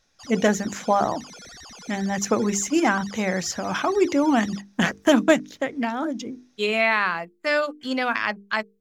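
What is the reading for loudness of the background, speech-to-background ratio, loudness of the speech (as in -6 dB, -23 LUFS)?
-41.5 LUFS, 18.0 dB, -23.5 LUFS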